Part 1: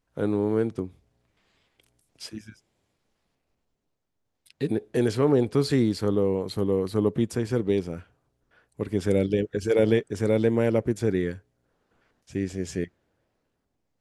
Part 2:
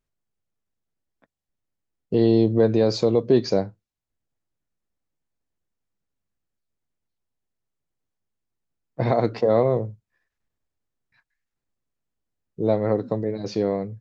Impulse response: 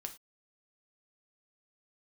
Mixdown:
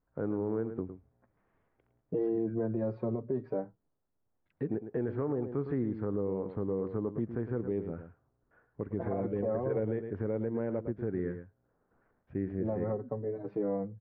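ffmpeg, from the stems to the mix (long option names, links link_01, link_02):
-filter_complex "[0:a]volume=-3.5dB,asplit=2[link_01][link_02];[link_02]volume=-11.5dB[link_03];[1:a]asplit=2[link_04][link_05];[link_05]adelay=4.9,afreqshift=0.61[link_06];[link_04][link_06]amix=inputs=2:normalize=1,volume=-5dB[link_07];[link_03]aecho=0:1:109:1[link_08];[link_01][link_07][link_08]amix=inputs=3:normalize=0,lowpass=frequency=1600:width=0.5412,lowpass=frequency=1600:width=1.3066,alimiter=limit=-23dB:level=0:latency=1:release=283"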